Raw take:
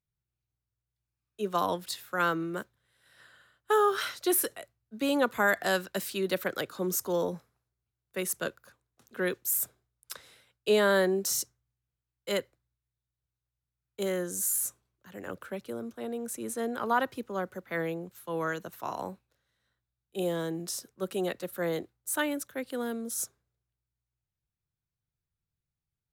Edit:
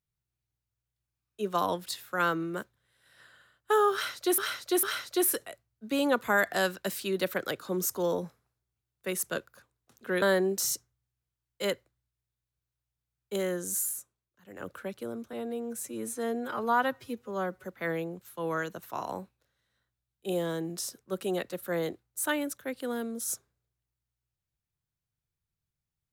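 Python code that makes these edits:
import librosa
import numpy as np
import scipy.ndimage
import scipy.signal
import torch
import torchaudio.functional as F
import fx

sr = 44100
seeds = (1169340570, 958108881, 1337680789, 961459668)

y = fx.edit(x, sr, fx.repeat(start_s=3.93, length_s=0.45, count=3),
    fx.cut(start_s=9.32, length_s=1.57),
    fx.fade_down_up(start_s=14.42, length_s=0.94, db=-11.0, fade_s=0.27),
    fx.stretch_span(start_s=16.0, length_s=1.54, factor=1.5), tone=tone)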